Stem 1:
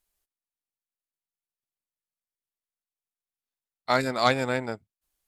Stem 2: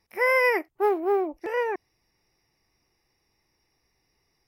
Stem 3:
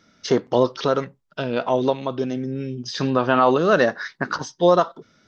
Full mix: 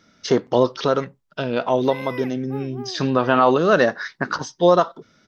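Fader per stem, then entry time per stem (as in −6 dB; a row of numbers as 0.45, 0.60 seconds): muted, −13.0 dB, +1.0 dB; muted, 1.70 s, 0.00 s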